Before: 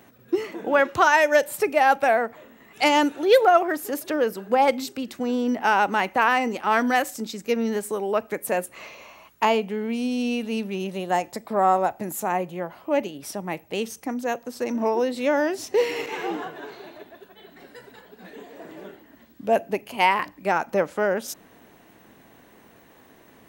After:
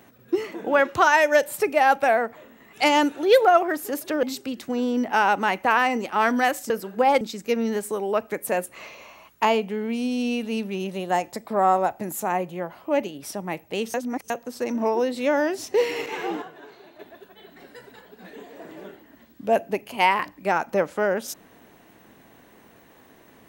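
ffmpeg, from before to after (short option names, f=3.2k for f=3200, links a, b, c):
-filter_complex "[0:a]asplit=8[a][b][c][d][e][f][g][h];[a]atrim=end=4.232[i];[b]atrim=start=4.738:end=7.212[j];[c]atrim=start=4.228:end=4.742[k];[d]atrim=start=7.208:end=13.942[l];[e]atrim=start=13.938:end=14.302,asetpts=PTS-STARTPTS,areverse[m];[f]atrim=start=14.298:end=16.422[n];[g]atrim=start=16.418:end=16.992,asetpts=PTS-STARTPTS,volume=-7dB[o];[h]atrim=start=16.988[p];[i][j]acrossfade=d=0.004:c1=hsin:c2=hsin[q];[q][k]acrossfade=d=0.004:c1=hsin:c2=hsin[r];[r][l]acrossfade=d=0.004:c1=hsin:c2=hsin[s];[s][m]acrossfade=d=0.004:c1=hsin:c2=hsin[t];[t][n]acrossfade=d=0.004:c1=hsin:c2=hsin[u];[u][o]acrossfade=d=0.004:c1=hsin:c2=hsin[v];[v][p]acrossfade=d=0.004:c1=hsin:c2=hsin"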